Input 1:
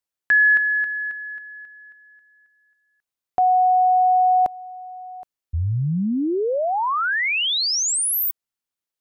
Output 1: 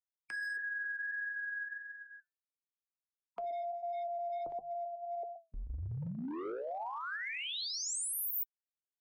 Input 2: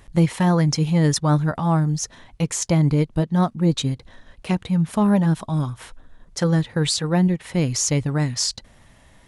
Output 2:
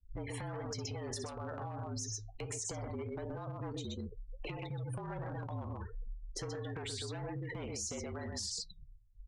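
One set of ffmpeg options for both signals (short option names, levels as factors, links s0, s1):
-filter_complex "[0:a]tremolo=f=2.5:d=0.45,equalizer=f=430:t=o:w=1.1:g=8.5,aecho=1:1:58|124:0.251|0.473,asoftclip=type=hard:threshold=0.188,afftfilt=real='re*gte(hypot(re,im),0.02)':imag='im*gte(hypot(re,im),0.02)':win_size=1024:overlap=0.75,bandreject=f=50:t=h:w=6,bandreject=f=100:t=h:w=6,bandreject=f=150:t=h:w=6,bandreject=f=200:t=h:w=6,acrossover=split=150|540[s0][s1][s2];[s0]acompressor=threshold=0.01:ratio=3[s3];[s1]acompressor=threshold=0.02:ratio=4[s4];[s2]acompressor=threshold=0.0355:ratio=4[s5];[s3][s4][s5]amix=inputs=3:normalize=0,flanger=delay=3.1:depth=4.3:regen=65:speed=1.5:shape=triangular,acompressor=threshold=0.01:ratio=12:attack=0.5:release=62:knee=1:detection=rms,highshelf=f=6100:g=5,flanger=delay=2.8:depth=3.4:regen=-85:speed=0.24:shape=triangular,afreqshift=-45,volume=2.66"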